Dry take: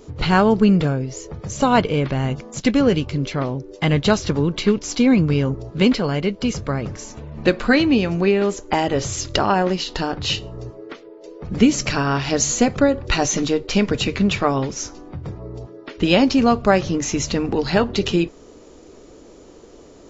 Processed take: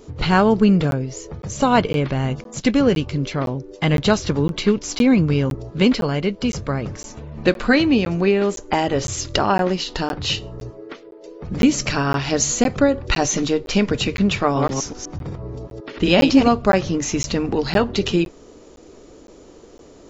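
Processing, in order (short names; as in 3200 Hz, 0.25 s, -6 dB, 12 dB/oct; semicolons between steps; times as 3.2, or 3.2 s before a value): 14.43–16.48 reverse delay 0.125 s, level -3 dB; crackling interface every 0.51 s, samples 512, zero, from 0.91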